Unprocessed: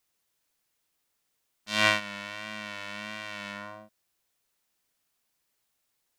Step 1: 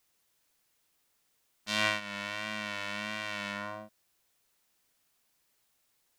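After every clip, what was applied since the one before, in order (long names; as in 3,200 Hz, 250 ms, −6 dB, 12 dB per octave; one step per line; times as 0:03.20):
downward compressor 2 to 1, threshold −34 dBFS, peak gain reduction 10.5 dB
level +3.5 dB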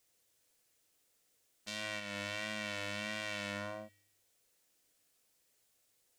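graphic EQ with 10 bands 500 Hz +6 dB, 1,000 Hz −5 dB, 8,000 Hz +4 dB
brickwall limiter −20.5 dBFS, peak gain reduction 10.5 dB
tuned comb filter 100 Hz, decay 0.83 s, harmonics odd, mix 70%
level +7 dB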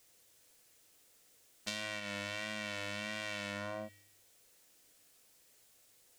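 downward compressor 6 to 1, threshold −43 dBFS, peak gain reduction 9.5 dB
level +8.5 dB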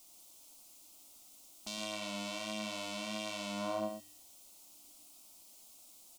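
brickwall limiter −28 dBFS, peak gain reduction 11.5 dB
phaser with its sweep stopped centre 460 Hz, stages 6
on a send: single-tap delay 113 ms −6.5 dB
on the sum: level +8 dB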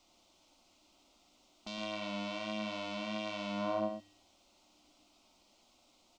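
high-frequency loss of the air 190 metres
level +3 dB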